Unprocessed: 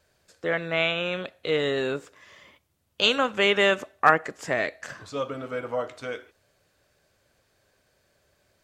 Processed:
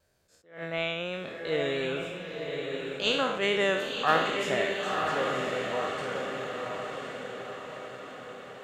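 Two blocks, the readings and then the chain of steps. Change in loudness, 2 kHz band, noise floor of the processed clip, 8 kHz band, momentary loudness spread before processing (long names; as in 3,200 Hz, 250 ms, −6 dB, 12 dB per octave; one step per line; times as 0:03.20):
−4.5 dB, −4.0 dB, −61 dBFS, −0.5 dB, 14 LU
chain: peak hold with a decay on every bin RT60 0.74 s
parametric band 2,400 Hz −4 dB 2.7 octaves
pitch vibrato 2.9 Hz 20 cents
feedback delay with all-pass diffusion 1,012 ms, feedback 56%, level −4 dB
level that may rise only so fast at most 150 dB per second
level −4.5 dB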